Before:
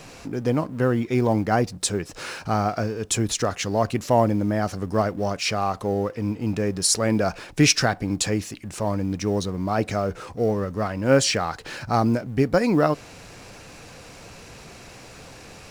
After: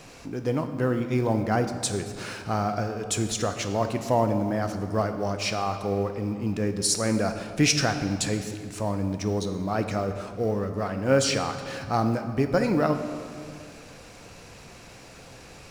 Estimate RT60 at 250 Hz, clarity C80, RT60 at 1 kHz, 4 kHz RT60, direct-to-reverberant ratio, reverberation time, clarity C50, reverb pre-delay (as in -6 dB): 2.5 s, 10.0 dB, 2.1 s, 1.5 s, 7.0 dB, 2.2 s, 8.5 dB, 5 ms